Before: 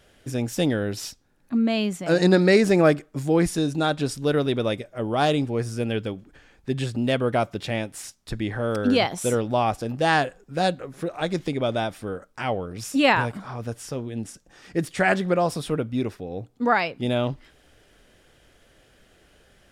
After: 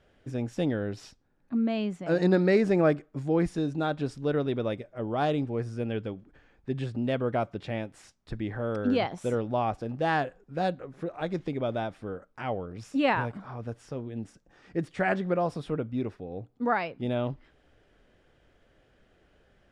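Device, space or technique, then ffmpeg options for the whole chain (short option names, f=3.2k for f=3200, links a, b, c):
through cloth: -af "lowpass=8.9k,highshelf=f=3.5k:g=-14,volume=-5dB"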